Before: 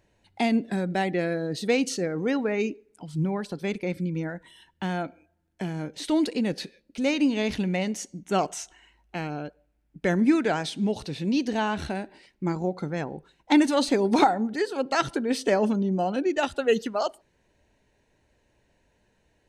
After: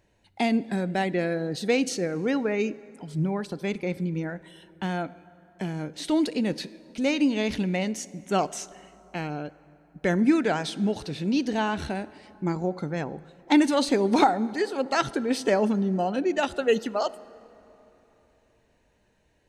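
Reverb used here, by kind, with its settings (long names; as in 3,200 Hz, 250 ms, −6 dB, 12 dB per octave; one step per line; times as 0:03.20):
dense smooth reverb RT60 3.4 s, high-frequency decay 0.55×, DRR 19 dB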